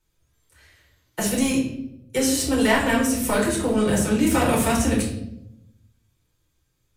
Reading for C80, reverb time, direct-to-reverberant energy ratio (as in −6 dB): 8.5 dB, 0.80 s, −4.0 dB